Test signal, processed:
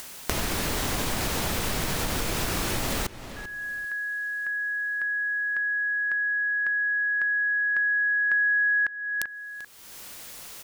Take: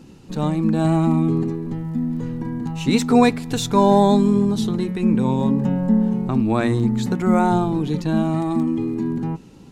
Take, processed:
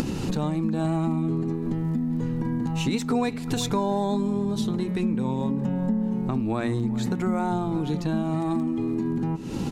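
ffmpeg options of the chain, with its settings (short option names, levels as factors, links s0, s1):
-filter_complex "[0:a]acompressor=mode=upward:threshold=0.1:ratio=2.5,asplit=2[s0][s1];[s1]adelay=390,lowpass=f=4200:p=1,volume=0.126,asplit=2[s2][s3];[s3]adelay=390,lowpass=f=4200:p=1,volume=0.22[s4];[s2][s4]amix=inputs=2:normalize=0[s5];[s0][s5]amix=inputs=2:normalize=0,acompressor=threshold=0.0224:ratio=4,volume=2.37"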